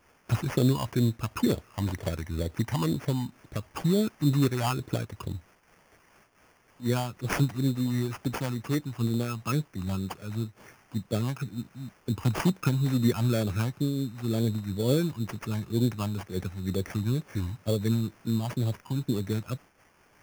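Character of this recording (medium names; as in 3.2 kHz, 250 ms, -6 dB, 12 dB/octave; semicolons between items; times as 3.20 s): a quantiser's noise floor 10-bit, dither triangular; phasing stages 8, 2.1 Hz, lowest notch 430–1500 Hz; aliases and images of a low sample rate 3.9 kHz, jitter 0%; random flutter of the level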